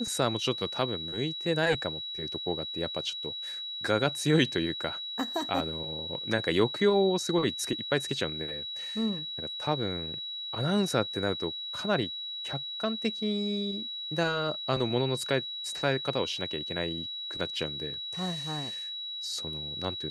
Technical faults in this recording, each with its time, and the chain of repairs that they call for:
whistle 3,900 Hz −35 dBFS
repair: notch filter 3,900 Hz, Q 30

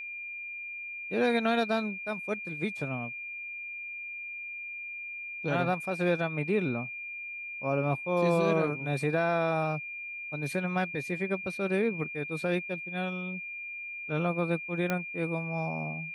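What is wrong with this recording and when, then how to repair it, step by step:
whistle 2,400 Hz −37 dBFS
0:14.90: click −15 dBFS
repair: click removal
notch filter 2,400 Hz, Q 30

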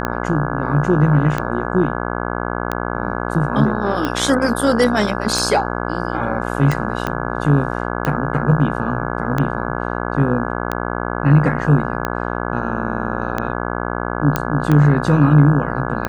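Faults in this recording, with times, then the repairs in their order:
mains buzz 60 Hz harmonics 28 −23 dBFS
scratch tick 45 rpm −7 dBFS
0:07.07: click −8 dBFS
0:14.36: click −3 dBFS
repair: click removal
hum removal 60 Hz, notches 28

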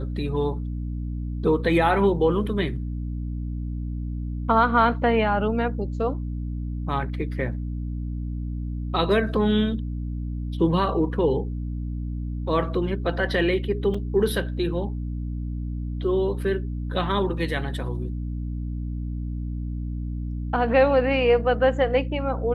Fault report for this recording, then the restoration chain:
mains hum 60 Hz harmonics 5 −29 dBFS
0:13.94: drop-out 4.4 ms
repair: hum removal 60 Hz, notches 5
repair the gap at 0:13.94, 4.4 ms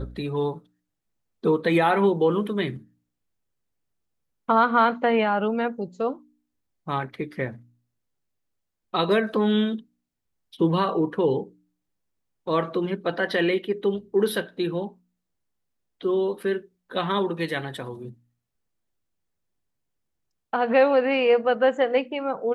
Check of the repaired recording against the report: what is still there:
none of them is left

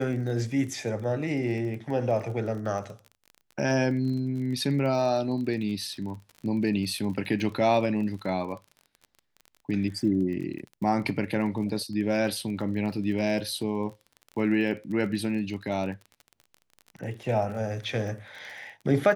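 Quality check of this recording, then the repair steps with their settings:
surface crackle 30 per second −36 dBFS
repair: click removal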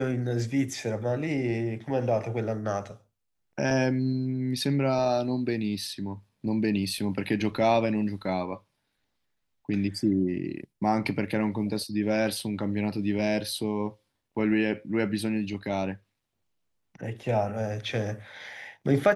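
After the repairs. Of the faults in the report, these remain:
none of them is left

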